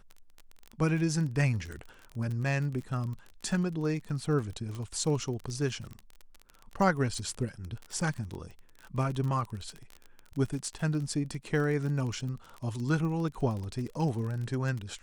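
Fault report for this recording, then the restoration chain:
crackle 29/s -35 dBFS
4.75 pop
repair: de-click

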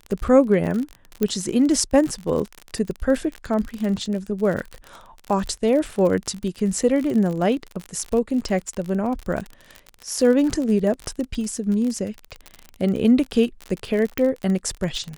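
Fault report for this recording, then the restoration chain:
crackle 44/s -26 dBFS
1.23 pop -9 dBFS
14.18 pop -9 dBFS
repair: de-click

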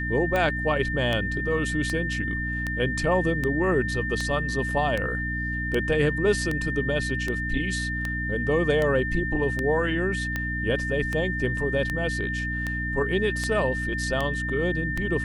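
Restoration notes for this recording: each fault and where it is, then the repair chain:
hum 60 Hz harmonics 5 -31 dBFS
tick 78 rpm -14 dBFS
tone 1800 Hz -29 dBFS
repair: de-click; de-hum 60 Hz, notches 5; notch 1800 Hz, Q 30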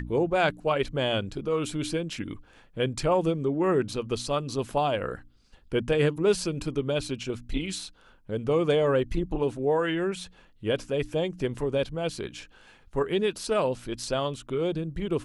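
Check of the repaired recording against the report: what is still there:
none

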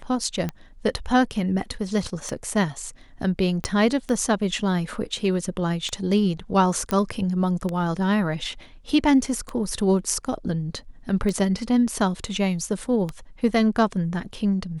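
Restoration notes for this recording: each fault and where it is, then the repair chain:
tick 33 1/3 rpm -15 dBFS
3.64 pop -12 dBFS
6.91 pop -11 dBFS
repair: de-click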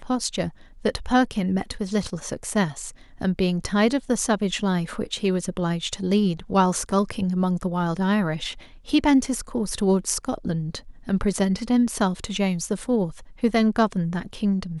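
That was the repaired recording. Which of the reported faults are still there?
3.64 pop

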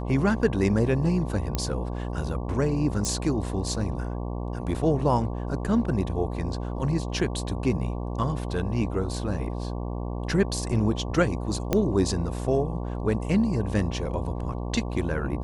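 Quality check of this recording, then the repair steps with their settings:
buzz 60 Hz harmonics 19 -31 dBFS
1.55 pop -12 dBFS
3.05 pop
11.73 pop -9 dBFS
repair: de-click; de-hum 60 Hz, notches 19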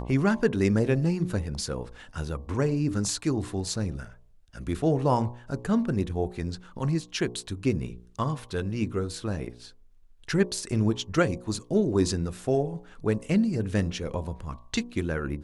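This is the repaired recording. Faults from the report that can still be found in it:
none

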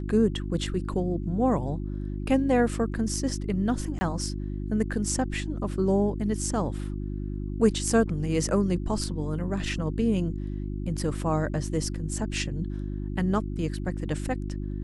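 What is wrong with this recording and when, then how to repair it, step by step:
hum 50 Hz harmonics 7 -32 dBFS
3.99–4.01 gap 20 ms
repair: de-hum 50 Hz, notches 7; interpolate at 3.99, 20 ms

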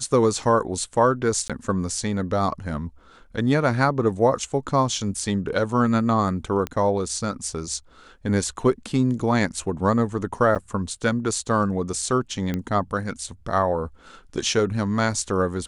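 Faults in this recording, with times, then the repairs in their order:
1.48–1.5 gap 16 ms
6.67 pop -14 dBFS
10.55–10.56 gap 7.6 ms
12.54 pop -14 dBFS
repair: de-click; interpolate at 1.48, 16 ms; interpolate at 10.55, 7.6 ms

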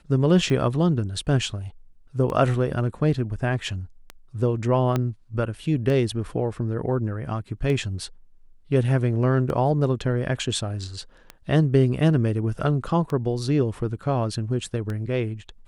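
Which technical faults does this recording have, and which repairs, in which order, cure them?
tick 33 1/3 rpm -18 dBFS
4.96 pop -11 dBFS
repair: de-click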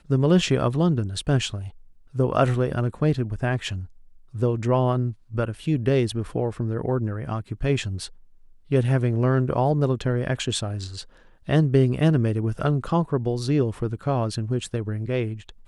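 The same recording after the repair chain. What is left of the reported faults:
4.96 pop

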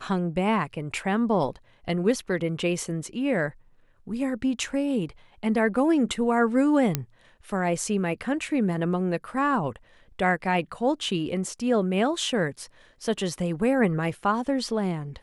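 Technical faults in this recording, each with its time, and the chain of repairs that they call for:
6.95 pop -8 dBFS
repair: de-click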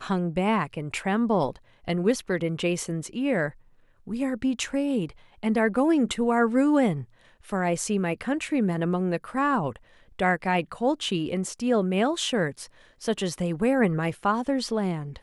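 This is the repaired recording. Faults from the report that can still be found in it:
none

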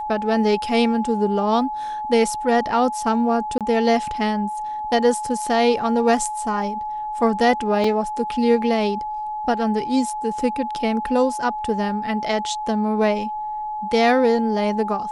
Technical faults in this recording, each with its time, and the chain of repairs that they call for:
tone 850 Hz -25 dBFS
3.58–3.61 gap 27 ms
7.84 gap 3.3 ms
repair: notch 850 Hz, Q 30; interpolate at 3.58, 27 ms; interpolate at 7.84, 3.3 ms

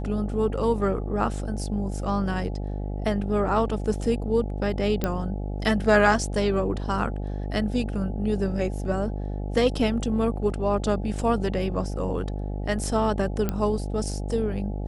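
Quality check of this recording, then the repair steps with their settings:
buzz 50 Hz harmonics 17 -30 dBFS
5.04 pop -11 dBFS
13.49 pop -12 dBFS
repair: de-click; de-hum 50 Hz, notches 17

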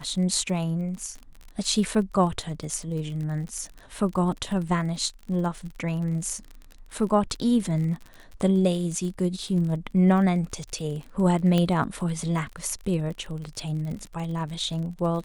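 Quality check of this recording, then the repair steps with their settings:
crackle 49/s -34 dBFS
11.58 pop -12 dBFS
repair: de-click

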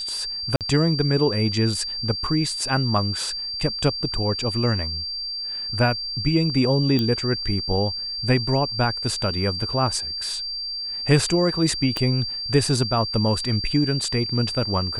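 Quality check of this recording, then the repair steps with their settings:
tone 4700 Hz -27 dBFS
0.56–0.61 gap 48 ms
6.99 pop -11 dBFS
11.97 pop -10 dBFS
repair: de-click; notch 4700 Hz, Q 30; interpolate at 0.56, 48 ms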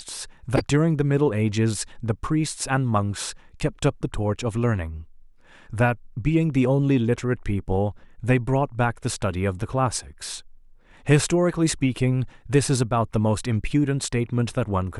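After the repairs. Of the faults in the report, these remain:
11.97 pop

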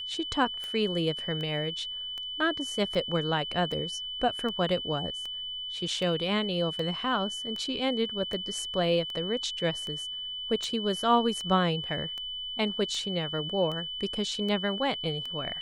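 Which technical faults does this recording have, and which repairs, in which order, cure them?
tick 78 rpm -24 dBFS
tone 3000 Hz -34 dBFS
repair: de-click; notch 3000 Hz, Q 30

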